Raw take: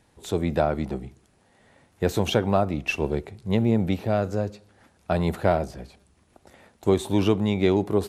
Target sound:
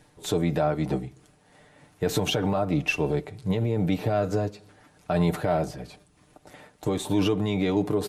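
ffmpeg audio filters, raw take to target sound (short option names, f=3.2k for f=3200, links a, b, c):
-af "tremolo=f=3.2:d=0.4,alimiter=limit=-19.5dB:level=0:latency=1:release=55,aecho=1:1:6.7:0.63,volume=4dB"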